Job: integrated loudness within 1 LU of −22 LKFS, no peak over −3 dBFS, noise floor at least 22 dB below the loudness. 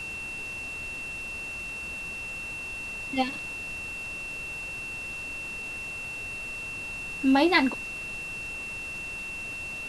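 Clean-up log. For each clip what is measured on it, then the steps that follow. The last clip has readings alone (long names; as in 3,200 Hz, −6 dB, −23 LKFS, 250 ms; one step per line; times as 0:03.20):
interfering tone 2,700 Hz; level of the tone −34 dBFS; background noise floor −37 dBFS; target noise floor −53 dBFS; integrated loudness −30.5 LKFS; sample peak −9.0 dBFS; target loudness −22.0 LKFS
→ notch filter 2,700 Hz, Q 30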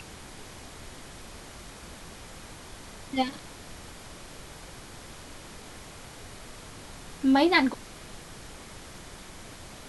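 interfering tone none found; background noise floor −46 dBFS; target noise floor −48 dBFS
→ noise reduction from a noise print 6 dB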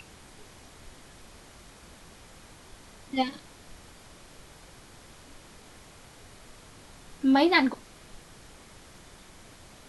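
background noise floor −52 dBFS; integrated loudness −25.0 LKFS; sample peak −9.5 dBFS; target loudness −22.0 LKFS
→ level +3 dB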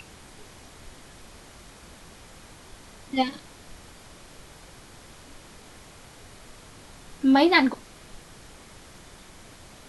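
integrated loudness −22.0 LKFS; sample peak −6.5 dBFS; background noise floor −49 dBFS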